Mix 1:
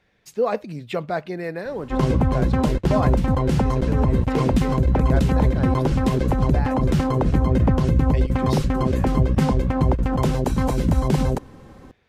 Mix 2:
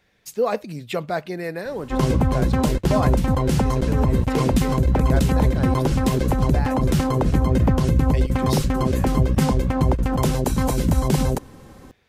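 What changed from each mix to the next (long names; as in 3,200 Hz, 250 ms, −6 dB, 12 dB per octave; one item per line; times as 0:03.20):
master: remove low-pass filter 3,300 Hz 6 dB per octave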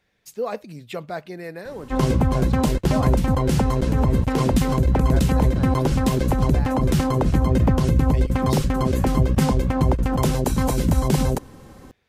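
speech −5.5 dB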